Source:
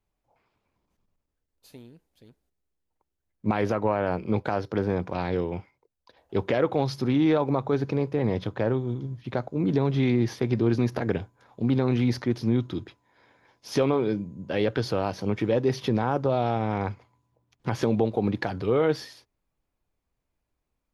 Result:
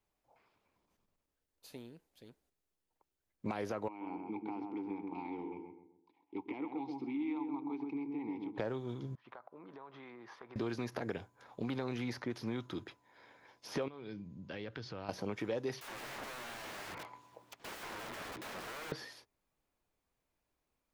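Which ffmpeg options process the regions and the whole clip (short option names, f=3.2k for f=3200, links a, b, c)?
-filter_complex "[0:a]asettb=1/sr,asplit=3[a][b][c];[a]atrim=end=3.884[d];[b]atrim=start=3.88:end=8.58,asetpts=PTS-STARTPTS,afade=t=in:d=0.004:c=qsin,afade=t=out:st=4.696:d=0.004:c=qsin,asplit=3[e][f][g];[e]bandpass=f=300:t=q:w=8,volume=0dB[h];[f]bandpass=f=870:t=q:w=8,volume=-6dB[i];[g]bandpass=f=2.24k:t=q:w=8,volume=-9dB[j];[h][i][j]amix=inputs=3:normalize=0,asplit=2[k][l];[l]adelay=131,lowpass=f=1.1k:p=1,volume=-4dB,asplit=2[m][n];[n]adelay=131,lowpass=f=1.1k:p=1,volume=0.41,asplit=2[o][p];[p]adelay=131,lowpass=f=1.1k:p=1,volume=0.41,asplit=2[q][r];[r]adelay=131,lowpass=f=1.1k:p=1,volume=0.41,asplit=2[s][t];[t]adelay=131,lowpass=f=1.1k:p=1,volume=0.41[u];[k][m][o][q][s][u]amix=inputs=6:normalize=0,atrim=end_sample=207270[v];[c]atrim=start=8.576[w];[d][v]acrossfade=d=0.004:c1=hsin:c2=qsin[x];[x][w]acrossfade=d=0.004:c1=qsin:c2=hsin,asettb=1/sr,asplit=3[y][z][aa];[y]atrim=end=9.154[ab];[z]atrim=start=9.15:end=10.56,asetpts=PTS-STARTPTS,afade=t=in:d=0.004:c=qsin,afade=t=out:st=1.406:d=0.004:c=qsin,bandpass=f=1.1k:t=q:w=2.5,acompressor=threshold=-47dB:ratio=5:attack=3.2:release=140:knee=1:detection=peak[ac];[aa]atrim=start=10.556[ad];[ab][ac]acrossfade=d=0.004:c1=hsin:c2=qsin[ae];[ae][ad]acrossfade=d=0.004:c1=qsin:c2=hsin,asettb=1/sr,asplit=3[af][ag][ah];[af]atrim=end=13.884[ai];[ag]atrim=start=13.88:end=15.09,asetpts=PTS-STARTPTS,afade=t=in:d=0.004:c=qsin,afade=t=out:st=1.206:d=0.004:c=qsin,lowpass=f=5.7k:w=0.5412,lowpass=f=5.7k:w=1.3066,equalizer=f=570:t=o:w=2.6:g=-10.5,acompressor=threshold=-40dB:ratio=2.5:attack=3.2:release=140:knee=1:detection=peak[aj];[ah]atrim=start=15.086[ak];[ai][aj]acrossfade=d=0.004:c1=hsin:c2=qsin[al];[al][ak]acrossfade=d=0.004:c1=qsin:c2=hsin,asettb=1/sr,asplit=3[am][an][ao];[am]atrim=end=15.814[ap];[an]atrim=start=15.81:end=18.92,asetpts=PTS-STARTPTS,afade=t=in:d=0.004:c=qsin,afade=t=out:st=3.106:d=0.004:c=qsin,acompressor=threshold=-39dB:ratio=2:attack=3.2:release=140:knee=1:detection=peak,asplit=2[aq][ar];[ar]highpass=f=720:p=1,volume=26dB,asoftclip=type=tanh:threshold=-20.5dB[as];[aq][as]amix=inputs=2:normalize=0,lowpass=f=5.8k:p=1,volume=-6dB,aeval=exprs='(mod(59.6*val(0)+1,2)-1)/59.6':c=same[at];[ao]atrim=start=18.916[au];[ap][at]acrossfade=d=0.004:c1=hsin:c2=qsin[av];[av][au]acrossfade=d=0.004:c1=qsin:c2=hsin,lowshelf=f=180:g=-9.5,acrossover=split=730|2300|5700[aw][ax][ay][az];[aw]acompressor=threshold=-38dB:ratio=4[ba];[ax]acompressor=threshold=-46dB:ratio=4[bb];[ay]acompressor=threshold=-57dB:ratio=4[bc];[az]acompressor=threshold=-58dB:ratio=4[bd];[ba][bb][bc][bd]amix=inputs=4:normalize=0"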